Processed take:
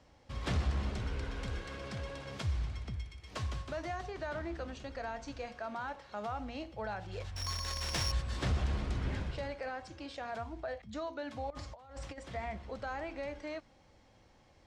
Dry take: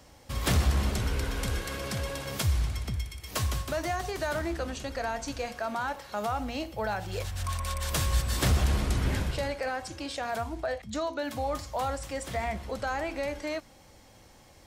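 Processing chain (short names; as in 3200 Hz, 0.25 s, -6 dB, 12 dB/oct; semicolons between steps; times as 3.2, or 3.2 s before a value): 4.06–4.52 high shelf 5400 Hz -> 8100 Hz -8.5 dB; 7.36–8.12 careless resampling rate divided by 8×, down none, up zero stuff; 11.5–12.18 negative-ratio compressor -37 dBFS, ratio -0.5; air absorption 110 m; gain -7.5 dB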